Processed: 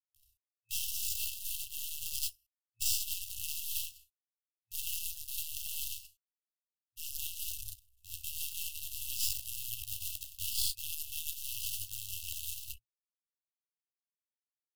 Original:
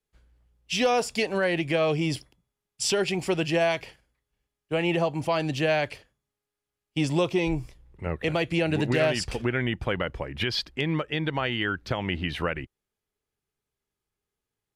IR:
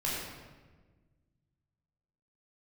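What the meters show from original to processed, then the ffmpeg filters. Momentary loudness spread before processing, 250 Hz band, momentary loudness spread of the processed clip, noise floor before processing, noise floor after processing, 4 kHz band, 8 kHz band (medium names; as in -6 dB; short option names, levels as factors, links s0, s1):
8 LU, under -40 dB, 10 LU, under -85 dBFS, under -85 dBFS, -7.5 dB, +2.5 dB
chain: -filter_complex "[0:a]acrusher=bits=6:dc=4:mix=0:aa=0.000001,highshelf=f=5400:g=10[s0];[1:a]atrim=start_sample=2205,atrim=end_sample=6174[s1];[s0][s1]afir=irnorm=-1:irlink=0,areverse,acompressor=threshold=0.0447:ratio=16,areverse,aemphasis=mode=production:type=50fm,aresample=32000,aresample=44100,aeval=exprs='0.266*(cos(1*acos(clip(val(0)/0.266,-1,1)))-cos(1*PI/2))+0.0188*(cos(3*acos(clip(val(0)/0.266,-1,1)))-cos(3*PI/2))+0.106*(cos(4*acos(clip(val(0)/0.266,-1,1)))-cos(4*PI/2))+0.00422*(cos(5*acos(clip(val(0)/0.266,-1,1)))-cos(5*PI/2))+0.0237*(cos(7*acos(clip(val(0)/0.266,-1,1)))-cos(7*PI/2))':c=same,afftfilt=real='re*(1-between(b*sr/4096,110,2600))':imag='im*(1-between(b*sr/4096,110,2600))':win_size=4096:overlap=0.75,volume=0.447"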